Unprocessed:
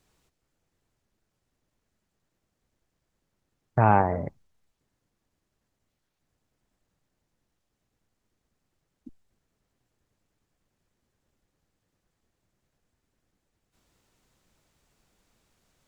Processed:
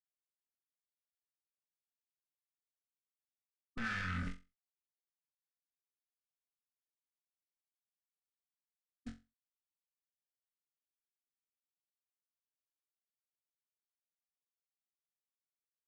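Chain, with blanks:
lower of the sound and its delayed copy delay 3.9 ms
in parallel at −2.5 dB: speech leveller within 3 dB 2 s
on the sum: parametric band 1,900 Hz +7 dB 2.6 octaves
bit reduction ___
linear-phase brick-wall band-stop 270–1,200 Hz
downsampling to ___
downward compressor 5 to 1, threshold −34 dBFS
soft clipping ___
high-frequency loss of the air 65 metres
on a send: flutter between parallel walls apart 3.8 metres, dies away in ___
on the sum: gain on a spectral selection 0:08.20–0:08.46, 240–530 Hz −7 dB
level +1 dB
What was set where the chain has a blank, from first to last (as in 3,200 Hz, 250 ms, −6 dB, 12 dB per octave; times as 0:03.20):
8 bits, 22,050 Hz, −37.5 dBFS, 0.26 s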